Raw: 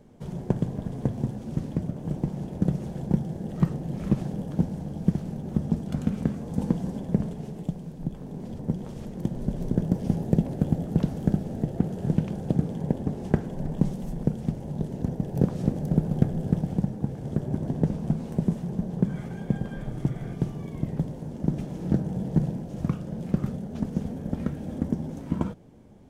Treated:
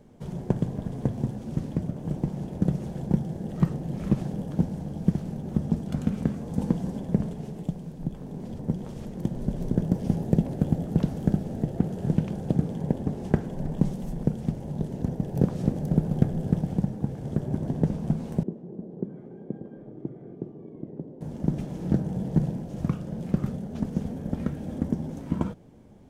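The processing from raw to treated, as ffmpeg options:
-filter_complex "[0:a]asettb=1/sr,asplit=3[s0][s1][s2];[s0]atrim=end=18.434[s3];[s1]atrim=start=18.43:end=21.21,asetpts=PTS-STARTPTS,afade=t=in:d=0.004:c=qsin,afade=t=out:st=2.776:d=0.004:c=qsin,bandpass=f=360:t=q:w=2.1[s4];[s2]atrim=start=21.206[s5];[s3][s4]acrossfade=d=0.004:c1=hsin:c2=qsin[s6];[s6][s5]acrossfade=d=0.004:c1=qsin:c2=hsin"

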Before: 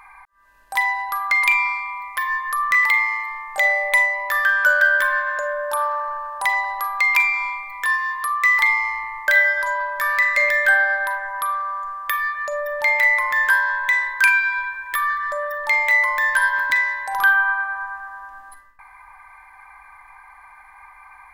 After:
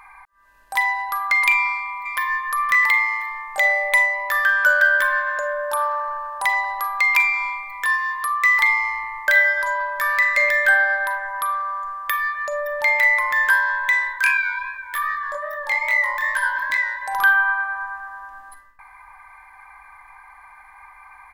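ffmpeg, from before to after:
-filter_complex "[0:a]asplit=2[s0][s1];[s1]afade=t=in:st=1.53:d=0.01,afade=t=out:st=2.45:d=0.01,aecho=0:1:520|1040|1560:0.266073|0.0798218|0.0239465[s2];[s0][s2]amix=inputs=2:normalize=0,asplit=3[s3][s4][s5];[s3]afade=t=out:st=14.12:d=0.02[s6];[s4]flanger=delay=18.5:depth=7.9:speed=2.5,afade=t=in:st=14.12:d=0.02,afade=t=out:st=17.01:d=0.02[s7];[s5]afade=t=in:st=17.01:d=0.02[s8];[s6][s7][s8]amix=inputs=3:normalize=0"

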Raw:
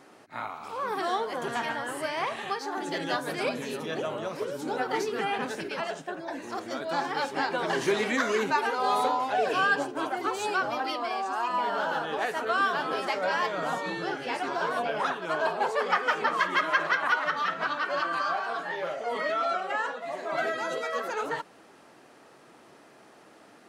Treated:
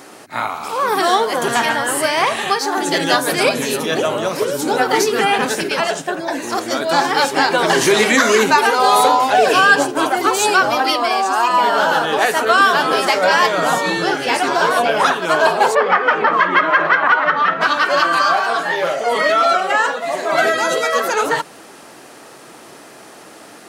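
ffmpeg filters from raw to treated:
-filter_complex "[0:a]asplit=3[s0][s1][s2];[s0]afade=t=out:st=15.74:d=0.02[s3];[s1]lowpass=2100,afade=t=in:st=15.74:d=0.02,afade=t=out:st=17.6:d=0.02[s4];[s2]afade=t=in:st=17.6:d=0.02[s5];[s3][s4][s5]amix=inputs=3:normalize=0,highshelf=f=5500:g=11.5,bandreject=f=50:t=h:w=6,bandreject=f=100:t=h:w=6,bandreject=f=150:t=h:w=6,bandreject=f=200:t=h:w=6,bandreject=f=250:t=h:w=6,alimiter=level_in=5.31:limit=0.891:release=50:level=0:latency=1,volume=0.891"

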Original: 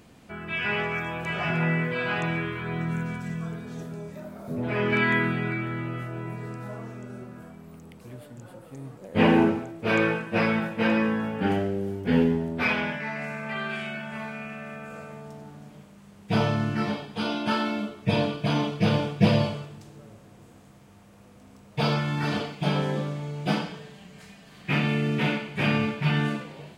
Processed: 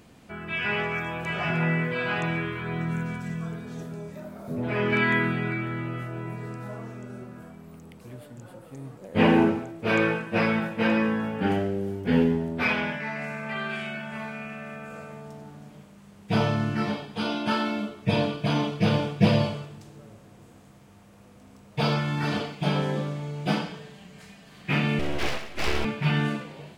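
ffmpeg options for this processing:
-filter_complex "[0:a]asettb=1/sr,asplit=3[s0][s1][s2];[s0]atrim=end=24.994[s3];[s1]atrim=start=24.99:end=25.85,asetpts=PTS-STARTPTS,afade=t=in:d=0.004:c=qsin,afade=t=out:st=0.856:d=0.004:c=qsin,aeval=exprs='abs(val(0))':c=same[s4];[s2]atrim=start=25.846[s5];[s3][s4]acrossfade=d=0.004:c1=hsin:c2=qsin[s6];[s6][s5]acrossfade=d=0.004:c1=qsin:c2=hsin"

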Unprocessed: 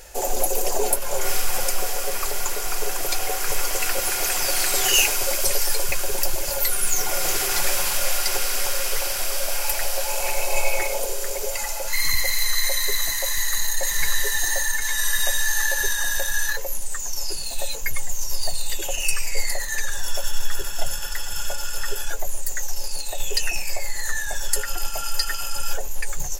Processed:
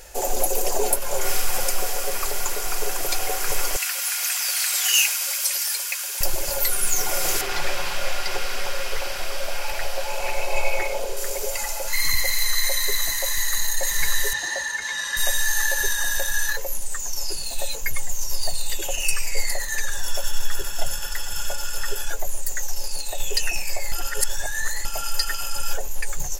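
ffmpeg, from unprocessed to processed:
-filter_complex "[0:a]asettb=1/sr,asplit=3[s0][s1][s2];[s0]atrim=end=3.764[s3];[s1]atrim=start=3.76:end=6.21,asetpts=PTS-STARTPTS,afade=t=in:d=0.004:c=qsin,afade=t=out:st=2.446:d=0.004:c=qsin,highpass=1500[s4];[s2]atrim=start=6.206[s5];[s3][s4]acrossfade=d=0.004:c1=hsin:c2=qsin[s6];[s6][s5]acrossfade=d=0.004:c1=qsin:c2=hsin,asettb=1/sr,asplit=3[s7][s8][s9];[s7]atrim=end=7.414[s10];[s8]atrim=start=7.41:end=11.17,asetpts=PTS-STARTPTS,afade=t=in:d=0.004:c=qsin,afade=t=out:st=3.756:d=0.004:c=qsin,acrossover=split=4800[s11][s12];[s12]acompressor=threshold=0.01:ratio=4:attack=1:release=60[s13];[s11][s13]amix=inputs=2:normalize=0[s14];[s9]atrim=start=11.166[s15];[s10][s14]acrossfade=d=0.004:c1=hsin:c2=qsin[s16];[s16][s15]acrossfade=d=0.004:c1=qsin:c2=hsin,asettb=1/sr,asplit=3[s17][s18][s19];[s17]atrim=end=14.334[s20];[s18]atrim=start=14.33:end=15.17,asetpts=PTS-STARTPTS,afade=t=in:d=0.004:c=qsin,afade=t=out:st=0.836:d=0.004:c=qsin,highpass=110,lowpass=5000[s21];[s19]atrim=start=15.166[s22];[s20][s21]acrossfade=d=0.004:c1=hsin:c2=qsin[s23];[s23][s22]acrossfade=d=0.004:c1=qsin:c2=hsin,asplit=3[s24][s25][s26];[s24]atrim=end=23.922[s27];[s25]atrim=start=23.918:end=24.852,asetpts=PTS-STARTPTS,areverse[s28];[s26]atrim=start=24.848[s29];[s27][s28]acrossfade=d=0.004:c1=hsin:c2=hsin[s30];[s30][s29]acrossfade=d=0.004:c1=hsin:c2=hsin"

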